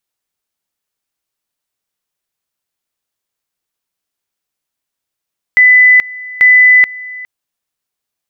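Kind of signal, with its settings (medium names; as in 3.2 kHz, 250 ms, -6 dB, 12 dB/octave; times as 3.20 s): two-level tone 2 kHz -2.5 dBFS, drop 21 dB, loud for 0.43 s, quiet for 0.41 s, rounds 2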